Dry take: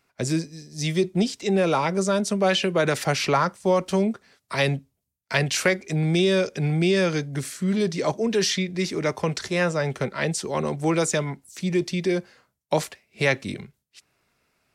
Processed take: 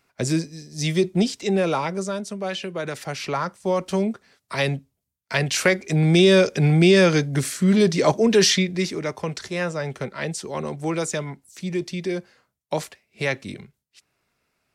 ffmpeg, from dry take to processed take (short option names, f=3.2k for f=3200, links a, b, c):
-af "volume=15.5dB,afade=t=out:st=1.3:d=0.96:silence=0.334965,afade=t=in:st=3.09:d=0.87:silence=0.446684,afade=t=in:st=5.33:d=1:silence=0.473151,afade=t=out:st=8.49:d=0.55:silence=0.354813"